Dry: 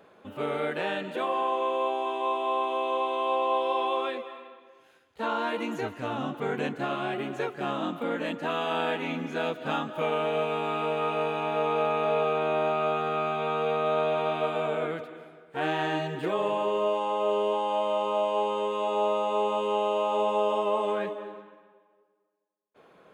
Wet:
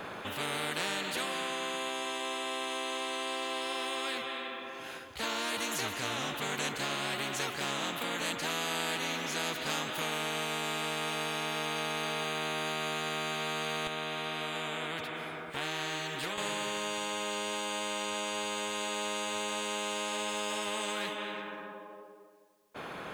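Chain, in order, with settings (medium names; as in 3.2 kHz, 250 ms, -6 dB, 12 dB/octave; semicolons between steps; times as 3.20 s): 13.87–16.38 s: compression 1.5:1, threshold -46 dBFS, peak gain reduction 8.5 dB; spectrum-flattening compressor 4:1; trim -2 dB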